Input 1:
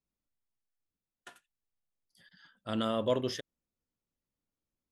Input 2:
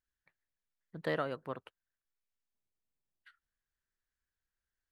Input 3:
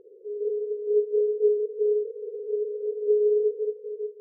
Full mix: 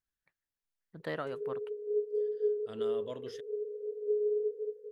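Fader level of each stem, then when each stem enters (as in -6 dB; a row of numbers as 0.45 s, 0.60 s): -13.0 dB, -3.0 dB, -9.0 dB; 0.00 s, 0.00 s, 1.00 s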